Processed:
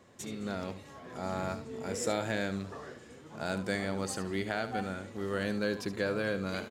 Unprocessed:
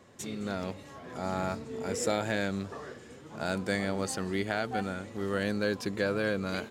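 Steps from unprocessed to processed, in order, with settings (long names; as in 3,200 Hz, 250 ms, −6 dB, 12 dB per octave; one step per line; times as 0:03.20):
single-tap delay 73 ms −12 dB
level −2.5 dB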